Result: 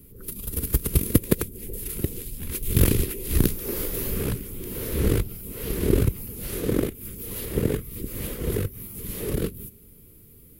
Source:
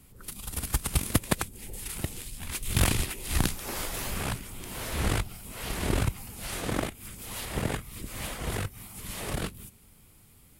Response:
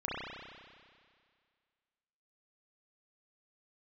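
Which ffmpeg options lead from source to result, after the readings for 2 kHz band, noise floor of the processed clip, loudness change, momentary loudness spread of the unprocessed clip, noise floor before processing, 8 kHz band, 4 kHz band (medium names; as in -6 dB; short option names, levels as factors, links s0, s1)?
-4.0 dB, -50 dBFS, +5.0 dB, 11 LU, -57 dBFS, +1.0 dB, -3.0 dB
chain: -af "lowshelf=f=570:t=q:w=3:g=8.5,aexciter=amount=4:drive=7:freq=11000,volume=0.708"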